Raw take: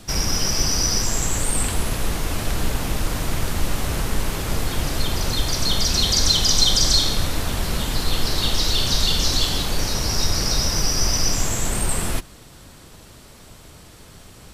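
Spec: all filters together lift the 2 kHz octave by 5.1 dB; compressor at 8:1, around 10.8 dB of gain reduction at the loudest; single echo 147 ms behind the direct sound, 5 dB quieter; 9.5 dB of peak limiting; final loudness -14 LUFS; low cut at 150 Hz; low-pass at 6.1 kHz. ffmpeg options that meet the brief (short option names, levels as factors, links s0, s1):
-af "highpass=150,lowpass=6100,equalizer=f=2000:t=o:g=6.5,acompressor=threshold=0.0562:ratio=8,alimiter=limit=0.0708:level=0:latency=1,aecho=1:1:147:0.562,volume=5.96"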